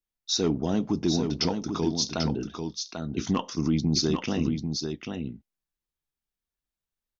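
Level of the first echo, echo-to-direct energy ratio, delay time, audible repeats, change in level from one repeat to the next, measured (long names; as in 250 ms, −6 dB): −6.0 dB, −6.0 dB, 792 ms, 1, repeats not evenly spaced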